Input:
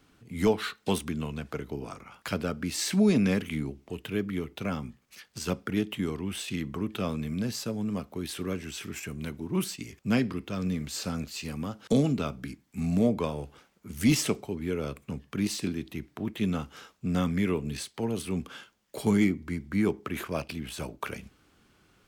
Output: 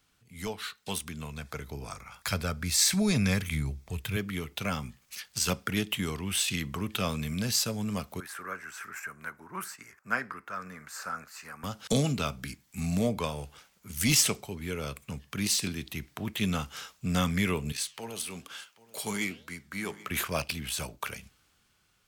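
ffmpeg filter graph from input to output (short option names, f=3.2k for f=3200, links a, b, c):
-filter_complex "[0:a]asettb=1/sr,asplit=3[a][b][c];[a]atrim=end=1.194[d];[b]atrim=start=1.19:end=4.17,asetpts=PTS-STARTPTS,afade=t=in:d=0.004:c=qsin,afade=t=out:st=2.976:d=0.004:c=qsin,bandreject=f=2.9k:w=6.8,asubboost=boost=5.5:cutoff=130[e];[c]atrim=start=4.166[f];[d][e]acrossfade=d=0.004:c1=hsin:c2=qsin[g];[g][f]acrossfade=d=0.004:c1=qsin:c2=hsin,asettb=1/sr,asplit=3[h][i][j];[h]atrim=end=8.204[k];[i]atrim=start=8.2:end=11.64,asetpts=PTS-STARTPTS,afade=t=in:d=0.004:c=qsin,afade=t=out:st=3.436:d=0.004:c=qsin,highpass=f=1.2k:p=1,highshelf=f=2.2k:t=q:w=3:g=-14[l];[j]atrim=start=11.636[m];[k][l]acrossfade=d=0.004:c1=hsin:c2=qsin[n];[n][m]acrossfade=d=0.004:c1=qsin:c2=hsin,asettb=1/sr,asplit=3[o][p][q];[o]atrim=end=17.724[r];[p]atrim=start=17.72:end=20.11,asetpts=PTS-STARTPTS,afade=t=in:d=0.004:c=qsin,afade=t=out:st=2.386:d=0.004:c=qsin,highpass=f=380:p=1,aecho=1:1:784:0.0944,atrim=end_sample=105399,flanger=delay=6.4:depth=9.2:regen=-88:speed=1.1:shape=sinusoidal[s];[q]atrim=start=20.106[t];[r][s]acrossfade=d=0.004:c1=hsin:c2=qsin[u];[u][t]acrossfade=d=0.004:c1=qsin:c2=hsin,highshelf=f=3.2k:g=8.5,dynaudnorm=f=240:g=11:m=12dB,equalizer=f=310:w=1:g=-9,volume=-8dB"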